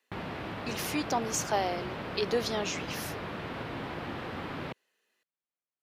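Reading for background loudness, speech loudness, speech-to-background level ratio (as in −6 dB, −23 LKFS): −38.0 LKFS, −33.0 LKFS, 5.0 dB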